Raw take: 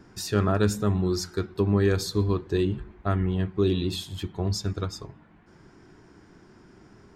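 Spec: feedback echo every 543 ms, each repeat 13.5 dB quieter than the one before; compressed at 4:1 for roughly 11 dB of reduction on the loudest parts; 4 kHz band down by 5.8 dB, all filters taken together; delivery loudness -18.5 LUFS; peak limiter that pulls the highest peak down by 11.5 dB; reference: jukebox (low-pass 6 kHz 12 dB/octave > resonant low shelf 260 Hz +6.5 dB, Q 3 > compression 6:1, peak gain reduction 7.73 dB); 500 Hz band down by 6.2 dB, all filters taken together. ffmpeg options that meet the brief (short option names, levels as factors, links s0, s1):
-af "equalizer=f=500:t=o:g=-3.5,equalizer=f=4000:t=o:g=-6,acompressor=threshold=0.0224:ratio=4,alimiter=level_in=2.99:limit=0.0631:level=0:latency=1,volume=0.335,lowpass=6000,lowshelf=f=260:t=q:w=3:g=6.5,aecho=1:1:543|1086:0.211|0.0444,acompressor=threshold=0.0178:ratio=6,volume=13.3"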